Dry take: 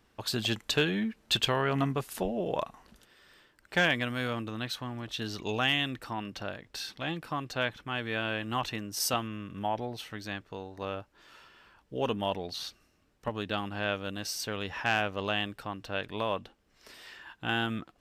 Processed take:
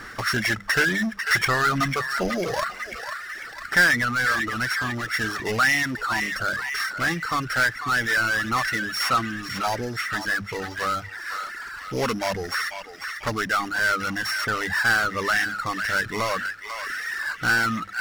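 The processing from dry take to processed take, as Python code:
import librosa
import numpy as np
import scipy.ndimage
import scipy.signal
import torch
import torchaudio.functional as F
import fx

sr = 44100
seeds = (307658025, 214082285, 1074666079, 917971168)

y = np.r_[np.sort(x[:len(x) // 8 * 8].reshape(-1, 8), axis=1).ravel(), x[len(x) // 8 * 8:]]
y = scipy.signal.sosfilt(scipy.signal.butter(2, 8100.0, 'lowpass', fs=sr, output='sos'), y)
y = fx.band_shelf(y, sr, hz=1600.0, db=15.5, octaves=1.0)
y = fx.hum_notches(y, sr, base_hz=50, count=4)
y = fx.echo_banded(y, sr, ms=495, feedback_pct=48, hz=2400.0, wet_db=-10.0)
y = fx.power_curve(y, sr, exponent=0.5)
y = fx.dereverb_blind(y, sr, rt60_s=1.3)
y = y * 10.0 ** (-5.0 / 20.0)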